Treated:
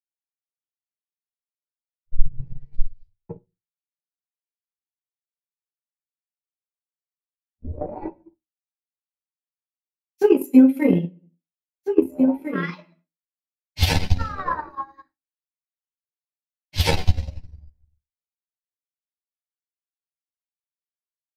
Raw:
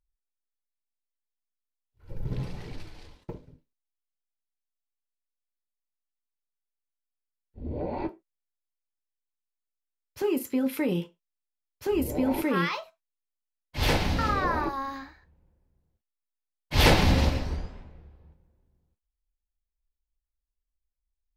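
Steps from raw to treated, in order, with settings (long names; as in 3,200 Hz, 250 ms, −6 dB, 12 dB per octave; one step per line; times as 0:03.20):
spectral dynamics exaggerated over time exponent 1.5
rectangular room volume 84 cubic metres, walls mixed, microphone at 0.47 metres
multi-voice chorus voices 2, 0.6 Hz, delay 12 ms, depth 1.5 ms
downward expander −49 dBFS
transient designer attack +10 dB, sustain −9 dB
automatic gain control gain up to 16 dB
multiband upward and downward expander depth 70%
level −6.5 dB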